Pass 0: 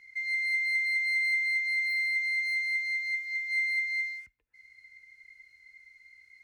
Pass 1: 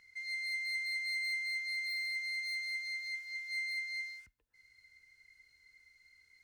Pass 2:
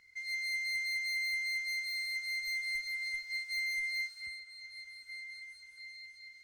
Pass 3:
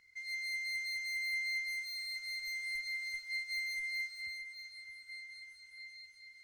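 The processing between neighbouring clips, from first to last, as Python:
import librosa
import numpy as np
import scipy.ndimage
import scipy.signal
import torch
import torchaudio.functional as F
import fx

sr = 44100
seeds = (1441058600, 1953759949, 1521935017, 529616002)

y1 = fx.peak_eq(x, sr, hz=2200.0, db=-11.0, octaves=0.37)
y2 = fx.echo_stepped(y1, sr, ms=758, hz=470.0, octaves=1.4, feedback_pct=70, wet_db=-0.5)
y2 = fx.cheby_harmonics(y2, sr, harmonics=(4, 5, 6, 7), levels_db=(-16, -17, -20, -19), full_scale_db=-28.5)
y3 = y2 + 10.0 ** (-10.5 / 20.0) * np.pad(y2, (int(620 * sr / 1000.0), 0))[:len(y2)]
y3 = F.gain(torch.from_numpy(y3), -3.0).numpy()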